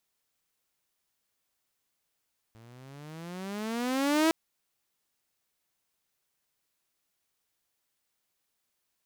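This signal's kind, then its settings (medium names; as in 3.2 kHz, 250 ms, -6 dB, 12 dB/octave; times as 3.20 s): gliding synth tone saw, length 1.76 s, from 110 Hz, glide +19 st, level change +31 dB, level -18 dB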